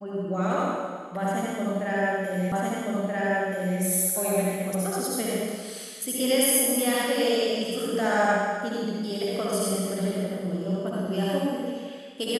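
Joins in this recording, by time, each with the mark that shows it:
2.52 repeat of the last 1.28 s

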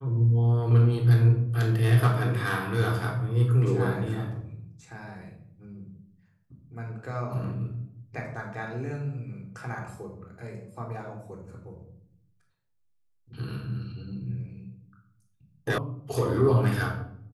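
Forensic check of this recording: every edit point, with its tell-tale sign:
15.78 sound cut off

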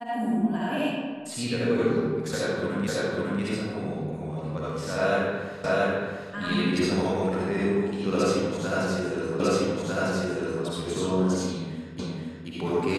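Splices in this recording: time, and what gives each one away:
2.87 repeat of the last 0.55 s
5.64 repeat of the last 0.68 s
9.4 repeat of the last 1.25 s
11.99 repeat of the last 0.48 s

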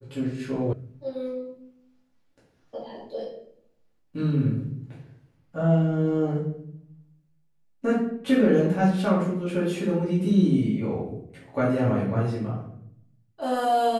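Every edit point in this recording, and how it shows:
0.73 sound cut off

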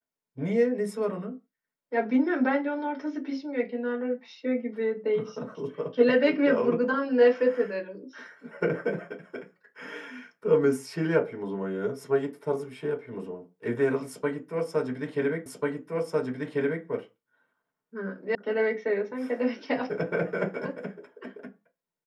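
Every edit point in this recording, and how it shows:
15.46 repeat of the last 1.39 s
18.35 sound cut off

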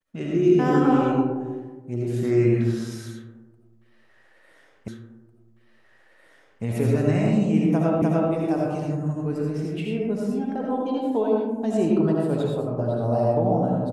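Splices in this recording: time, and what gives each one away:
4.88 repeat of the last 1.75 s
8.02 repeat of the last 0.3 s

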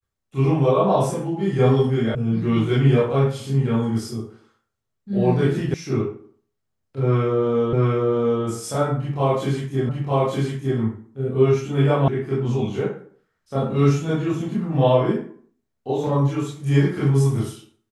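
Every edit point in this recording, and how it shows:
2.15 sound cut off
5.74 sound cut off
7.73 repeat of the last 0.7 s
9.89 repeat of the last 0.91 s
12.08 sound cut off

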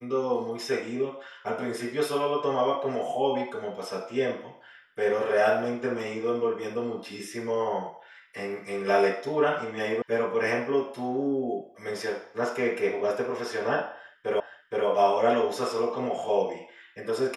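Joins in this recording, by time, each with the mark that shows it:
10.02 sound cut off
14.4 repeat of the last 0.47 s

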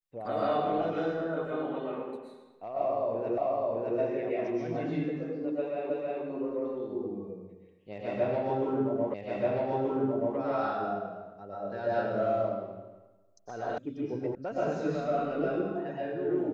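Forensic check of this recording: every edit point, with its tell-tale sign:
3.38 repeat of the last 0.61 s
5.9 repeat of the last 0.32 s
9.14 repeat of the last 1.23 s
13.78 sound cut off
14.35 sound cut off

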